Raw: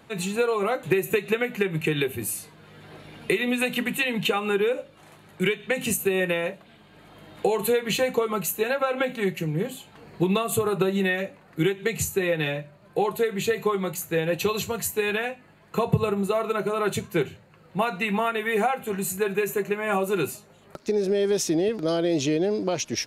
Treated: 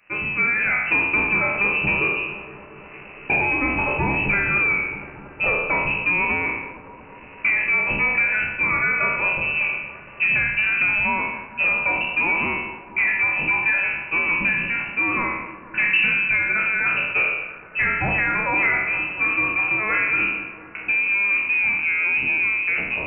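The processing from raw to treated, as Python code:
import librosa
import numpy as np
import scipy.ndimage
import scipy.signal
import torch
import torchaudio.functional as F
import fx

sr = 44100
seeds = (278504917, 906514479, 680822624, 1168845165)

y = fx.spec_trails(x, sr, decay_s=0.92)
y = fx.leveller(y, sr, passes=2)
y = scipy.signal.sosfilt(scipy.signal.butter(2, 68.0, 'highpass', fs=sr, output='sos'), y)
y = fx.echo_wet_highpass(y, sr, ms=231, feedback_pct=81, hz=1600.0, wet_db=-14)
y = fx.freq_invert(y, sr, carrier_hz=2800)
y = y * 10.0 ** (-5.0 / 20.0)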